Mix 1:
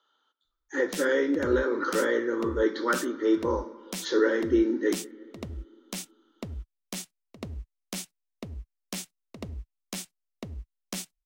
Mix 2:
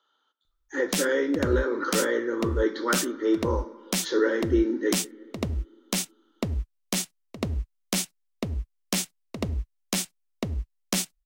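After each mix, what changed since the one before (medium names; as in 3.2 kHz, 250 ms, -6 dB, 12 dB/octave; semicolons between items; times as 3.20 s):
background +9.0 dB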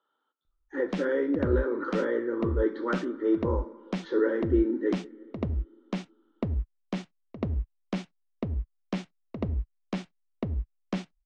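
master: add tape spacing loss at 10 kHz 41 dB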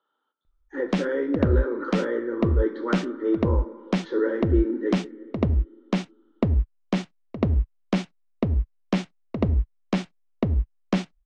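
speech: send +6.0 dB; background +8.0 dB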